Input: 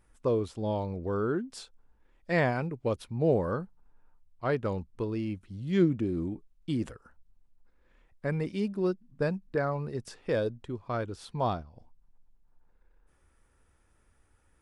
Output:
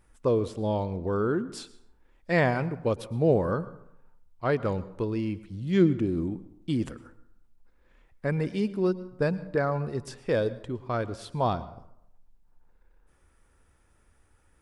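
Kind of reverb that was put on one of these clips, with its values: plate-style reverb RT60 0.75 s, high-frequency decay 0.55×, pre-delay 95 ms, DRR 16.5 dB; gain +3 dB

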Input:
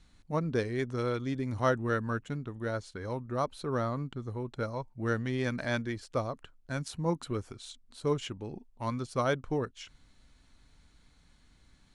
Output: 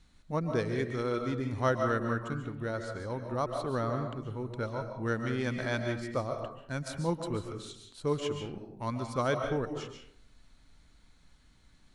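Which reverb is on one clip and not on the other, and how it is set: digital reverb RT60 0.67 s, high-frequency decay 0.5×, pre-delay 0.1 s, DRR 4.5 dB; gain -1 dB

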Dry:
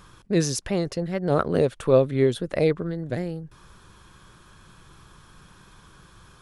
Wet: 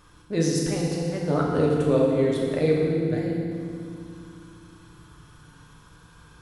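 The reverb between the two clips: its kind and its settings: FDN reverb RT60 2.4 s, low-frequency decay 1.55×, high-frequency decay 0.85×, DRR -3.5 dB; gain -6 dB

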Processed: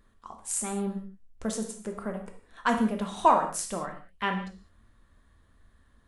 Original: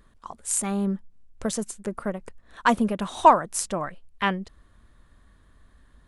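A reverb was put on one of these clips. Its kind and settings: non-linear reverb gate 0.23 s falling, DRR 3 dB; gain -6 dB

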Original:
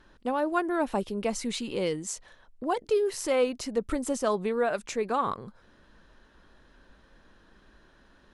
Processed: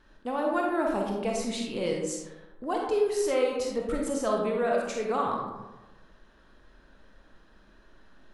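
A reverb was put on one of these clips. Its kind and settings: digital reverb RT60 1.1 s, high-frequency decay 0.45×, pre-delay 5 ms, DRR -1 dB; gain -3.5 dB

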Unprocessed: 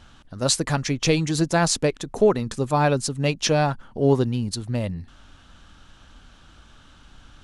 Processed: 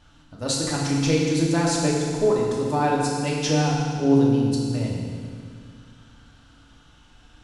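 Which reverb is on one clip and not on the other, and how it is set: FDN reverb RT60 2.1 s, low-frequency decay 1.25×, high-frequency decay 0.95×, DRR -4 dB; gain -7.5 dB

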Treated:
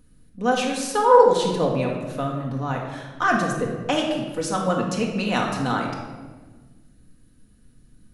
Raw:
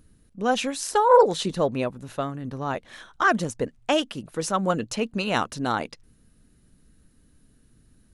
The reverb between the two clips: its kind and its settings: shoebox room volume 1100 m³, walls mixed, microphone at 1.9 m; gain -2 dB

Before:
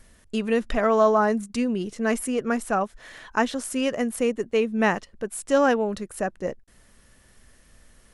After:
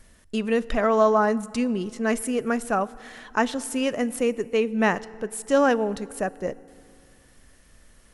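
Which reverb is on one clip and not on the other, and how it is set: FDN reverb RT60 2.3 s, low-frequency decay 1.35×, high-frequency decay 0.7×, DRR 18.5 dB

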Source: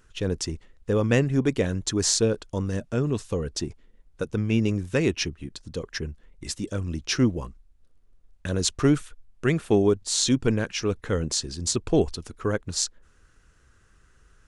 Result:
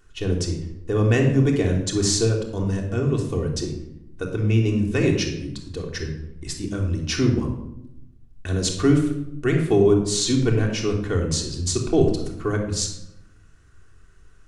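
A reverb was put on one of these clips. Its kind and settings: shoebox room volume 2500 m³, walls furnished, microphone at 3.4 m; gain -1.5 dB

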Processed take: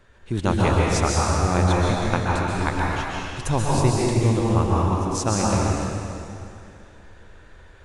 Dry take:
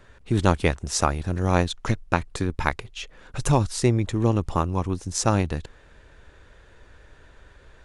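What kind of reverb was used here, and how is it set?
plate-style reverb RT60 2.7 s, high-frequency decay 0.85×, pre-delay 0.115 s, DRR -5 dB; gain -3.5 dB

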